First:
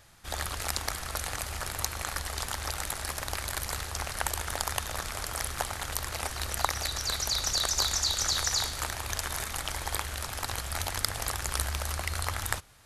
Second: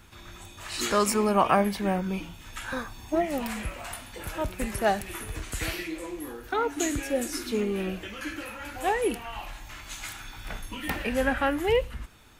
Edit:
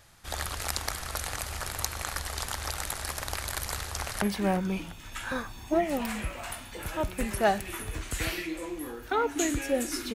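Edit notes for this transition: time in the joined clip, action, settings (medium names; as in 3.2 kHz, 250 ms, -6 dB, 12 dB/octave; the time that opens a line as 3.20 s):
first
3.71–4.22 s: echo throw 350 ms, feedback 50%, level -13.5 dB
4.22 s: go over to second from 1.63 s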